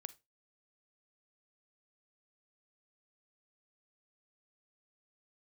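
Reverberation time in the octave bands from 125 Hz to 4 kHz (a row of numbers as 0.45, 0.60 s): 0.25, 0.25, 0.25, 0.20, 0.20, 0.20 s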